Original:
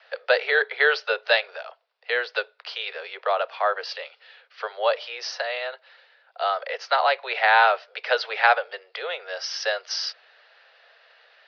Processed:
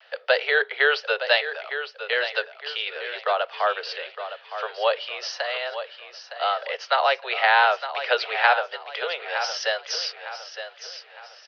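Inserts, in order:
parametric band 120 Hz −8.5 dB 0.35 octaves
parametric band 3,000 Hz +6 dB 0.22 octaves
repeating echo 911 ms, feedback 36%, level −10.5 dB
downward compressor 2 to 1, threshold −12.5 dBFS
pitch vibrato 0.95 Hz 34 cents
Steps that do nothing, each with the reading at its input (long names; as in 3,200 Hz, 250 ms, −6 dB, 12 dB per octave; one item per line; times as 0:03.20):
parametric band 120 Hz: nothing at its input below 360 Hz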